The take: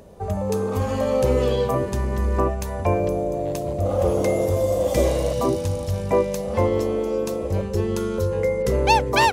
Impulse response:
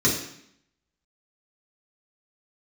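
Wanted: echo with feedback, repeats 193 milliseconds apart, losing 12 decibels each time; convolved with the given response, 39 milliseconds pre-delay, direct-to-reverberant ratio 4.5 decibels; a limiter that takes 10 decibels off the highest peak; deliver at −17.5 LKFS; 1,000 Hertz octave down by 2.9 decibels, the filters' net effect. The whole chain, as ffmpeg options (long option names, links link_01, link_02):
-filter_complex "[0:a]equalizer=frequency=1000:width_type=o:gain=-3.5,alimiter=limit=-15dB:level=0:latency=1,aecho=1:1:193|386|579:0.251|0.0628|0.0157,asplit=2[link_01][link_02];[1:a]atrim=start_sample=2205,adelay=39[link_03];[link_02][link_03]afir=irnorm=-1:irlink=0,volume=-19dB[link_04];[link_01][link_04]amix=inputs=2:normalize=0,volume=5dB"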